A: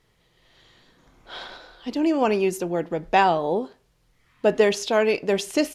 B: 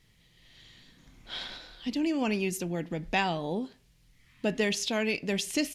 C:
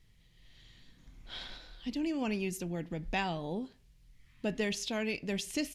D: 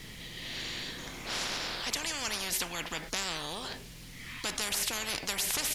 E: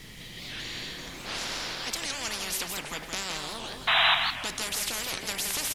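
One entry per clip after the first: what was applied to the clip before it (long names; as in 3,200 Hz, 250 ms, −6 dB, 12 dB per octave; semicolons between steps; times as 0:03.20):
flat-topped bell 720 Hz −10 dB 2.4 octaves; in parallel at +1.5 dB: downward compressor, threshold −35 dBFS, peak gain reduction 14.5 dB; on the sum: level −4.5 dB
low-shelf EQ 90 Hz +12 dB; level −6 dB
every bin compressed towards the loudest bin 10 to 1; level +4.5 dB
sound drawn into the spectrogram noise, 0:03.87–0:04.15, 630–4,000 Hz −22 dBFS; repeating echo 168 ms, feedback 30%, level −5.5 dB; wow of a warped record 78 rpm, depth 250 cents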